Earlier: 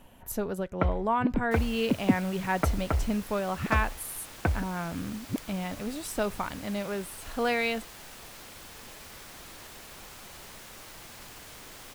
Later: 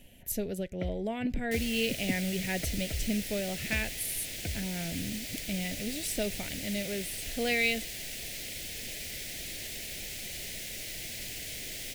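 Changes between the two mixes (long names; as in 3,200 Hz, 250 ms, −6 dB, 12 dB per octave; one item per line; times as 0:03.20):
first sound −9.0 dB
second sound +5.5 dB
master: add drawn EQ curve 110 Hz 0 dB, 660 Hz −4 dB, 1,100 Hz −28 dB, 2,000 Hz +3 dB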